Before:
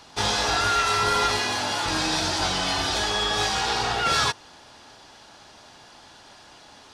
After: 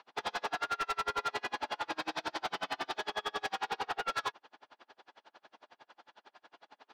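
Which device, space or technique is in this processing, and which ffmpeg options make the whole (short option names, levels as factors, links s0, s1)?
helicopter radio: -af "highpass=370,lowpass=2500,aeval=exprs='val(0)*pow(10,-37*(0.5-0.5*cos(2*PI*11*n/s))/20)':c=same,asoftclip=type=hard:threshold=0.0447,volume=0.841"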